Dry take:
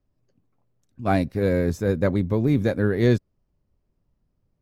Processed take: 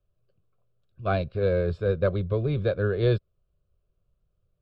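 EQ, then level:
low-pass filter 5,100 Hz 24 dB per octave
phaser with its sweep stopped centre 1,300 Hz, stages 8
0.0 dB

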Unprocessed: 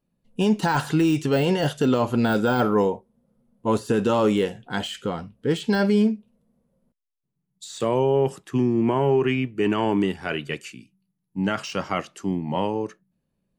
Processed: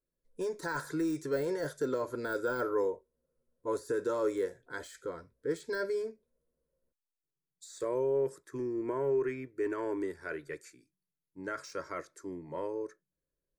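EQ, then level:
parametric band 110 Hz −12.5 dB 0.52 octaves
phaser with its sweep stopped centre 780 Hz, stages 6
notch filter 1,200 Hz, Q 6.8
−8.0 dB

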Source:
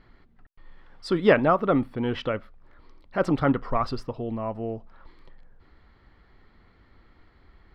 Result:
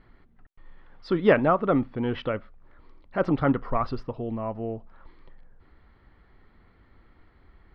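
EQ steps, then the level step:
high-frequency loss of the air 270 metres
high-shelf EQ 4,300 Hz +5.5 dB
0.0 dB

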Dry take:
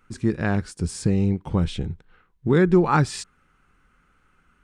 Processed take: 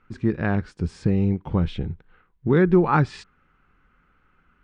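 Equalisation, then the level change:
low-pass filter 3,000 Hz 12 dB per octave
0.0 dB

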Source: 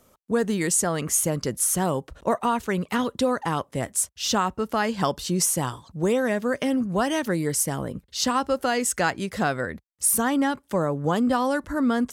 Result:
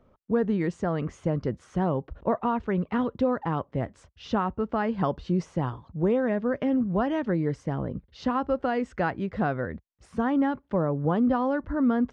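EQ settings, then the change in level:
high-frequency loss of the air 64 metres
head-to-tape spacing loss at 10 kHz 38 dB
low-shelf EQ 81 Hz +6 dB
0.0 dB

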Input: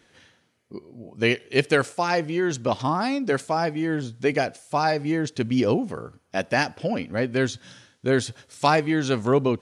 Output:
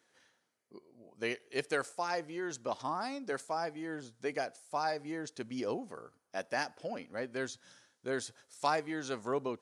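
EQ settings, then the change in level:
high-pass filter 730 Hz 6 dB per octave
parametric band 2,800 Hz −8 dB 1.3 octaves
−7.5 dB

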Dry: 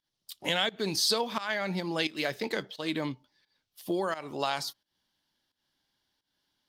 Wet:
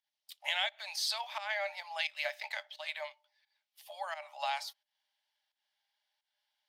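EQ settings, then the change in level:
Chebyshev high-pass with heavy ripple 580 Hz, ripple 9 dB
0.0 dB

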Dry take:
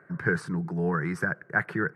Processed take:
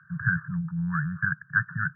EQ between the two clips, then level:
inverse Chebyshev band-stop filter 290–720 Hz, stop band 50 dB
linear-phase brick-wall low-pass 1,800 Hz
high-frequency loss of the air 360 metres
+5.5 dB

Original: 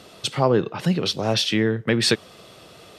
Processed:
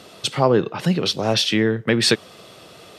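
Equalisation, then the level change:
low-shelf EQ 60 Hz −9.5 dB
+2.5 dB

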